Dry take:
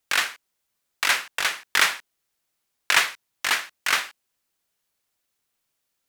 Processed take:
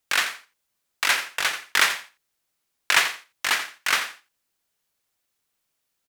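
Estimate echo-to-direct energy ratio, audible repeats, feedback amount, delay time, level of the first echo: -12.0 dB, 2, 16%, 87 ms, -12.0 dB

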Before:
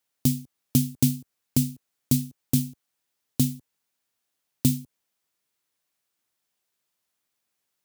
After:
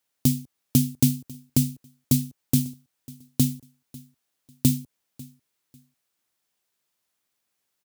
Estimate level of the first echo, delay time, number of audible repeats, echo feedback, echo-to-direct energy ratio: -22.0 dB, 546 ms, 2, 25%, -21.5 dB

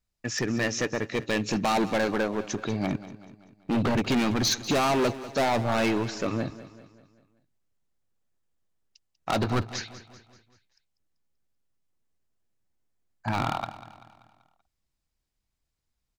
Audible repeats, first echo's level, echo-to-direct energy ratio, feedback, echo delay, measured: 4, -15.5 dB, -14.5 dB, 50%, 193 ms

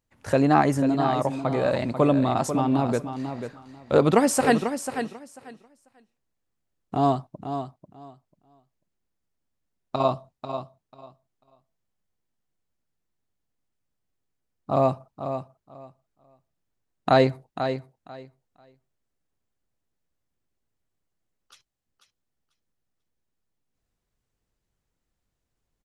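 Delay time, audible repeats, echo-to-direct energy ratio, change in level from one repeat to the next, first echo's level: 492 ms, 2, -9.0 dB, -15.0 dB, -9.0 dB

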